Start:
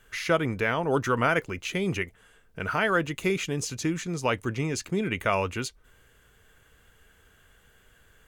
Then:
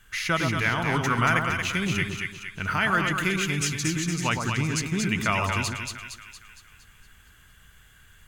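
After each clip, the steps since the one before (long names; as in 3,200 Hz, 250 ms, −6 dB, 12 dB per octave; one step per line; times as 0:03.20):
parametric band 490 Hz −14.5 dB 1.2 octaves
echo with a time of its own for lows and highs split 1,300 Hz, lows 115 ms, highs 231 ms, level −3.5 dB
level +4 dB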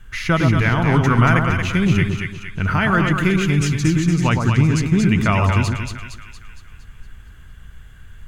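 spectral tilt −2.5 dB per octave
level +5.5 dB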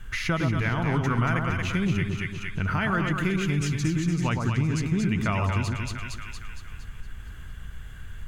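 downward compressor 2 to 1, threshold −33 dBFS, peak gain reduction 13 dB
level +2 dB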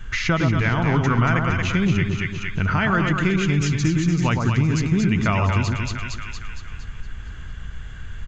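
downsampling to 16,000 Hz
level +5.5 dB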